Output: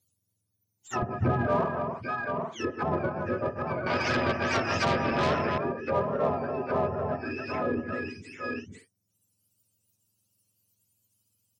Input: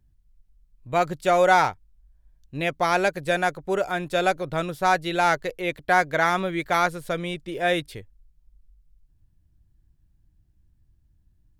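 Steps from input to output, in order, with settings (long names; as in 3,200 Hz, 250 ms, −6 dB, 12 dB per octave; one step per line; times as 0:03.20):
frequency axis turned over on the octave scale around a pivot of 940 Hz
on a send: multi-tap delay 57/130/151/289/791/842 ms −17/−14/−12.5/−8/−8/−15.5 dB
on the sum: treble cut that deepens with the level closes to 860 Hz, closed at −22 dBFS
0:01.02–0:01.47: spectral tilt −3.5 dB per octave
in parallel at −3 dB: soft clipping −25.5 dBFS, distortion −9 dB
0:03.86–0:05.58: on the sum: every bin compressed towards the loudest bin 2 to 1
level −6 dB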